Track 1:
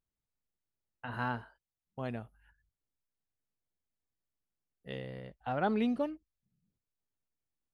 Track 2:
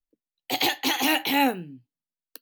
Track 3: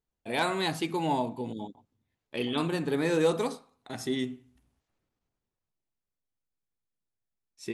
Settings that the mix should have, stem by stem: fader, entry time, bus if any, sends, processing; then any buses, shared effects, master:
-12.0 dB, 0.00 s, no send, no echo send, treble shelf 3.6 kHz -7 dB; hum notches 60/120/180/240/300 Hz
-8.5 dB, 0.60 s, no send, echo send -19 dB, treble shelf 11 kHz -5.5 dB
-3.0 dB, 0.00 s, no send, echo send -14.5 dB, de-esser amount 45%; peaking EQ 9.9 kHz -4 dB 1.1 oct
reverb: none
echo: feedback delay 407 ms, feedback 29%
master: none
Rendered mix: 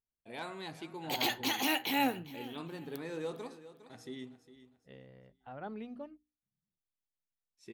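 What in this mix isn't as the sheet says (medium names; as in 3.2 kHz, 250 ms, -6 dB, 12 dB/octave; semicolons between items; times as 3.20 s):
stem 2: missing treble shelf 11 kHz -5.5 dB; stem 3 -3.0 dB -> -14.0 dB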